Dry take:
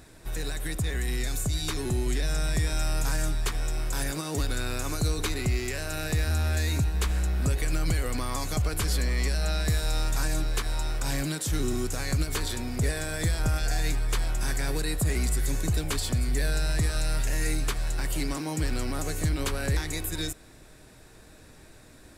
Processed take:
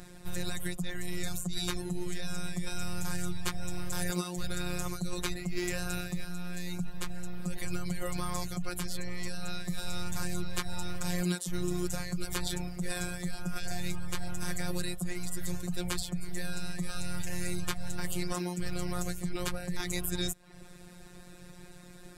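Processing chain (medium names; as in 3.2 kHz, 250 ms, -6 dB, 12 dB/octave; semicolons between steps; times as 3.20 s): reverb removal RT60 0.56 s; peaking EQ 87 Hz +10.5 dB 1.4 oct; reverse; compression 6:1, threshold -27 dBFS, peak gain reduction 13 dB; reverse; robot voice 178 Hz; trim +3 dB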